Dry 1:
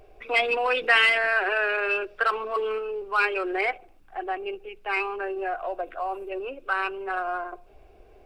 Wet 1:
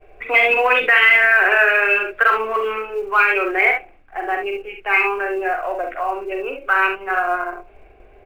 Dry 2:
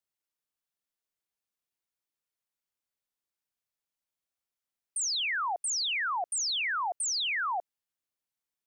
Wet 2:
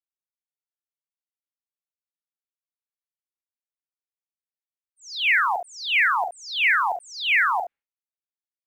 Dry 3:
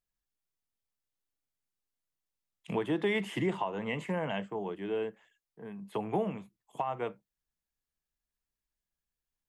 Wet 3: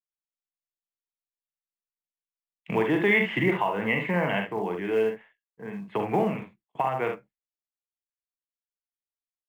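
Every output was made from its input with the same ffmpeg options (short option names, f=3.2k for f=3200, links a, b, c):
-filter_complex "[0:a]lowpass=f=2.2k:t=q:w=2.2,agate=range=-33dB:threshold=-49dB:ratio=3:detection=peak,aecho=1:1:45|68:0.501|0.422,asplit=2[a][b];[b]acrusher=bits=5:mode=log:mix=0:aa=0.000001,volume=-11.5dB[c];[a][c]amix=inputs=2:normalize=0,alimiter=level_in=6.5dB:limit=-1dB:release=50:level=0:latency=1,volume=-3.5dB"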